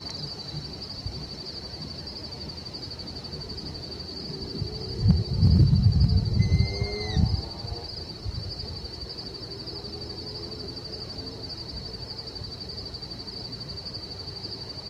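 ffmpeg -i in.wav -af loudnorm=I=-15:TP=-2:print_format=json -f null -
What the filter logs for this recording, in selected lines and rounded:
"input_i" : "-30.0",
"input_tp" : "-7.2",
"input_lra" : "11.1",
"input_thresh" : "-40.0",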